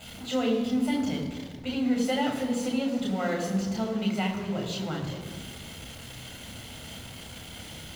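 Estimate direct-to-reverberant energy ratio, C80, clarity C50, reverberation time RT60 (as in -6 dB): 0.5 dB, 7.5 dB, 6.0 dB, 1.6 s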